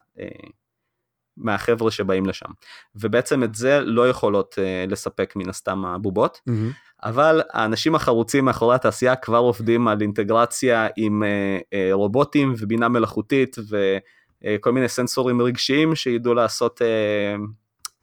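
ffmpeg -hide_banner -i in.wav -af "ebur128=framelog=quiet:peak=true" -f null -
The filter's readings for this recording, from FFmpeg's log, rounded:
Integrated loudness:
  I:         -20.7 LUFS
  Threshold: -31.1 LUFS
Loudness range:
  LRA:         3.7 LU
  Threshold: -40.9 LUFS
  LRA low:   -22.8 LUFS
  LRA high:  -19.1 LUFS
True peak:
  Peak:       -4.8 dBFS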